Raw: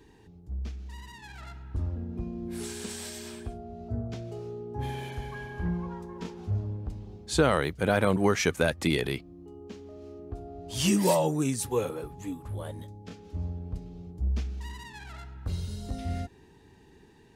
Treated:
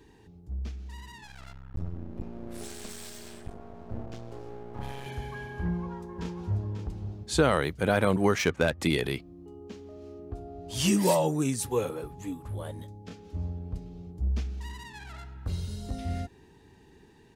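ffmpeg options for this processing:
-filter_complex "[0:a]asettb=1/sr,asplit=3[a][b][c];[a]atrim=end=1.244[d];[b]atrim=start=1.24:end=5.06,asetpts=PTS-STARTPTS,afade=t=in:d=0.004:c=qsin,afade=t=out:st=3.816:d=0.004:c=qsin,aeval=exprs='max(val(0),0)':c=same[e];[c]atrim=start=5.056[f];[d][e]acrossfade=d=0.004:c1=hsin:c2=qsin[g];[g][f]acrossfade=d=0.004:c1=qsin:c2=hsin,asplit=2[h][i];[i]afade=t=in:st=5.64:d=0.01,afade=t=out:st=6.69:d=0.01,aecho=0:1:540|1080:0.398107|0.0398107[j];[h][j]amix=inputs=2:normalize=0,asettb=1/sr,asplit=3[k][l][m];[k]atrim=end=8.384[n];[l]atrim=start=8.38:end=8.8,asetpts=PTS-STARTPTS,afade=t=in:d=0.004:c=qsin,afade=t=out:st=0.416:d=0.004:c=qsin,adynamicsmooth=sensitivity=5.5:basefreq=2.4k[o];[m]atrim=start=8.796[p];[n][o]acrossfade=d=0.004:c1=hsin:c2=qsin[q];[q][p]acrossfade=d=0.004:c1=qsin:c2=hsin"

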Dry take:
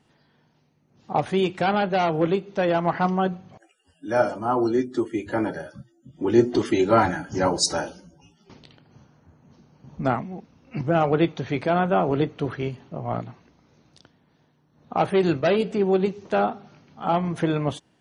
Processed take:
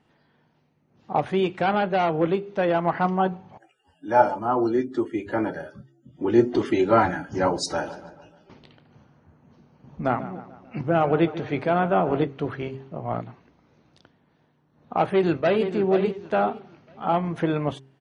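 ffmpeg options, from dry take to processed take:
-filter_complex "[0:a]asettb=1/sr,asplit=3[a][b][c];[a]atrim=end=3.204[d];[b]atrim=start=3.2:end=4.39,asetpts=PTS-STARTPTS,afade=t=in:d=0.004:c=qsin,afade=t=out:st=1.186:d=0.004:c=qsin,equalizer=f=870:w=6.9:g=14[e];[c]atrim=start=4.386[f];[d][e]acrossfade=d=0.004:c1=hsin:c2=qsin[g];[g][f]acrossfade=d=0.004:c1=qsin:c2=hsin,asplit=3[h][i][j];[h]afade=t=out:st=7.85:d=0.02[k];[i]asplit=2[l][m];[m]adelay=146,lowpass=f=3.6k:p=1,volume=-14dB,asplit=2[n][o];[o]adelay=146,lowpass=f=3.6k:p=1,volume=0.54,asplit=2[p][q];[q]adelay=146,lowpass=f=3.6k:p=1,volume=0.54,asplit=2[r][s];[s]adelay=146,lowpass=f=3.6k:p=1,volume=0.54,asplit=2[t][u];[u]adelay=146,lowpass=f=3.6k:p=1,volume=0.54[v];[l][n][p][r][t][v]amix=inputs=6:normalize=0,afade=t=in:st=7.85:d=0.02,afade=t=out:st=12.23:d=0.02[w];[j]afade=t=in:st=12.23:d=0.02[x];[k][w][x]amix=inputs=3:normalize=0,asplit=2[y][z];[z]afade=t=in:st=15.04:d=0.01,afade=t=out:st=15.63:d=0.01,aecho=0:1:480|960|1440:0.354813|0.0887033|0.0221758[aa];[y][aa]amix=inputs=2:normalize=0,bass=f=250:g=-2,treble=f=4k:g=-10,bandreject=f=134.2:t=h:w=4,bandreject=f=268.4:t=h:w=4,bandreject=f=402.6:t=h:w=4"

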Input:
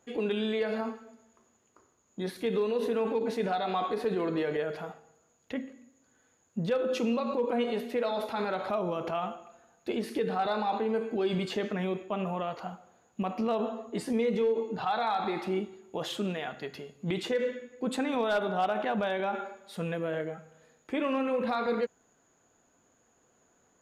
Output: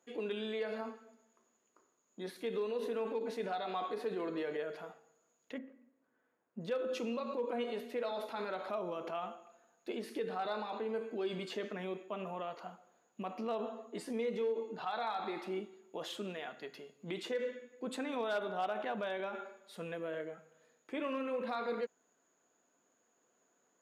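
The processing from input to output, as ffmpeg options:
-filter_complex "[0:a]asettb=1/sr,asplit=3[a][b][c];[a]atrim=end=5.584[d];[b]atrim=start=5.58:end=6.61,asetpts=PTS-STARTPTS,afade=t=in:d=0.004:c=qsin,afade=t=out:st=1.026:d=0.004:c=qsin,lowpass=1.8k[e];[c]atrim=start=6.606[f];[d][e]acrossfade=d=0.004:c1=hsin:c2=qsin[g];[g][f]acrossfade=d=0.004:c1=qsin:c2=hsin,highpass=240,bandreject=f=800:w=17,volume=-7dB"

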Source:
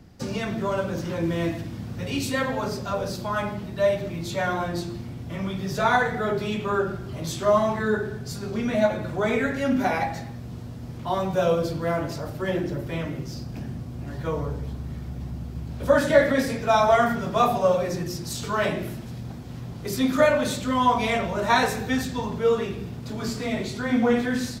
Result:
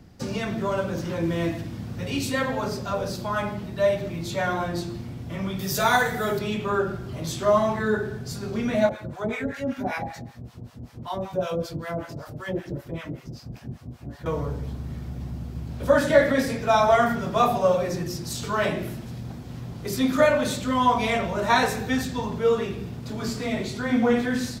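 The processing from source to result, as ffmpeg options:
-filter_complex "[0:a]asettb=1/sr,asplit=3[a][b][c];[a]atrim=end=5.594[d];[b]atrim=start=5.59:end=6.39,asetpts=PTS-STARTPTS,afade=t=in:d=0.004:c=qsin,afade=t=out:st=0.796:d=0.004:c=qsin,aemphasis=mode=production:type=75fm[e];[c]atrim=start=6.386[f];[d][e]acrossfade=d=0.004:c1=hsin:c2=qsin[g];[g][f]acrossfade=d=0.004:c1=qsin:c2=hsin,asettb=1/sr,asplit=3[h][i][j];[h]atrim=end=8.894[k];[i]atrim=start=8.89:end=14.26,asetpts=PTS-STARTPTS,afade=t=in:d=0.004:c=qsin,afade=t=out:st=5.366:d=0.004:c=qsin,acrossover=split=740[l][m];[l]aeval=exprs='val(0)*(1-1/2+1/2*cos(2*PI*5.2*n/s))':c=same[n];[m]aeval=exprs='val(0)*(1-1/2-1/2*cos(2*PI*5.2*n/s))':c=same[o];[n][o]amix=inputs=2:normalize=0[p];[j]atrim=start=14.256[q];[k][p]acrossfade=d=0.004:c1=hsin:c2=qsin[r];[r][q]acrossfade=d=0.004:c1=qsin:c2=hsin"

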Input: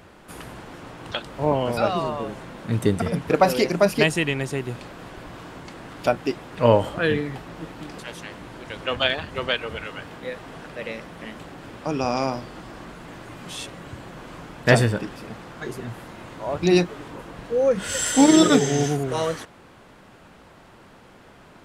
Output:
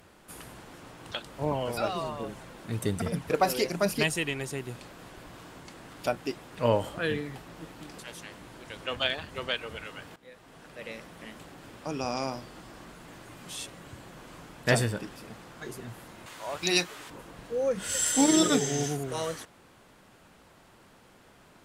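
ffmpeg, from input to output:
-filter_complex "[0:a]asettb=1/sr,asplit=3[a][b][c];[a]atrim=end=1.414[d];[b]atrim=start=1.41:end=4.48,asetpts=PTS-STARTPTS,afade=t=in:d=0.004:c=qsin,afade=t=out:st=3.066:d=0.004:c=qsin,aphaser=in_gain=1:out_gain=1:delay=3.1:decay=0.29:speed=1.2:type=triangular[e];[c]atrim=start=4.476[f];[d][e]acrossfade=d=0.004:c1=hsin:c2=qsin[g];[g][f]acrossfade=d=0.004:c1=qsin:c2=hsin,asettb=1/sr,asplit=3[h][i][j];[h]atrim=end=16.264[k];[i]atrim=start=16.26:end=17.1,asetpts=PTS-STARTPTS,afade=t=in:d=0.004:c=qsin,afade=t=out:st=0.836:d=0.004:c=qsin,tiltshelf=f=670:g=-8[l];[j]atrim=start=17.096[m];[k][l]acrossfade=d=0.004:c1=hsin:c2=qsin[n];[n][m]acrossfade=d=0.004:c1=qsin:c2=hsin,asplit=2[o][p];[o]atrim=end=10.16,asetpts=PTS-STARTPTS,afade=t=out:st=10.156:d=0.004:c=hsin:silence=0.149624[q];[p]atrim=start=10.16,asetpts=PTS-STARTPTS,afade=t=in:d=0.79:silence=0.149624[r];[q][r]concat=n=2:v=0:a=1,aemphasis=mode=production:type=cd,volume=-8dB"

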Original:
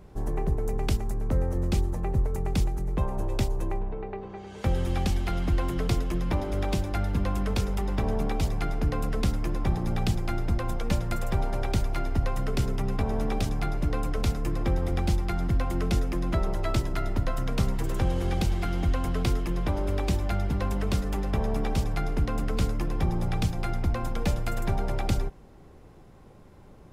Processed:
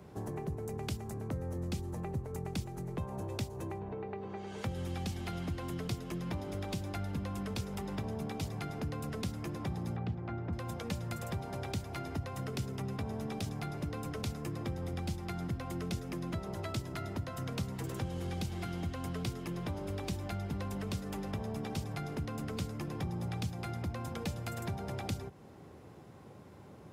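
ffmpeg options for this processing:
-filter_complex "[0:a]asettb=1/sr,asplit=3[a][b][c];[a]atrim=end=9.964[d];[b]atrim=start=9.96:end=10.53,asetpts=PTS-STARTPTS,afade=t=in:d=0.004:c=qsin,afade=t=out:st=0.566:d=0.004:c=qsin,lowpass=1.7k[e];[c]atrim=start=10.526[f];[d][e]acrossfade=d=0.004:c1=hsin:c2=qsin[g];[g][f]acrossfade=d=0.004:c1=qsin:c2=hsin,acrossover=split=230|3000[h][i][j];[i]acompressor=threshold=-37dB:ratio=2.5[k];[h][k][j]amix=inputs=3:normalize=0,highpass=f=83:w=0.5412,highpass=f=83:w=1.3066,acompressor=threshold=-39dB:ratio=2"

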